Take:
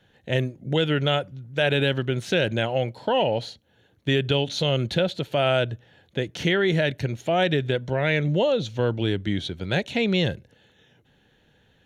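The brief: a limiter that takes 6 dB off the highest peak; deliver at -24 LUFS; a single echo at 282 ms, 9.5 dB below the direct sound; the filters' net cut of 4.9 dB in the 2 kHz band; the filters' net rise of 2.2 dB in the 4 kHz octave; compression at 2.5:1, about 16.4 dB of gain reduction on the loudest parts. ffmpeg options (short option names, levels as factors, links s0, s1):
-af "equalizer=f=2000:t=o:g=-8.5,equalizer=f=4000:t=o:g=6.5,acompressor=threshold=0.00631:ratio=2.5,alimiter=level_in=1.88:limit=0.0631:level=0:latency=1,volume=0.531,aecho=1:1:282:0.335,volume=7.08"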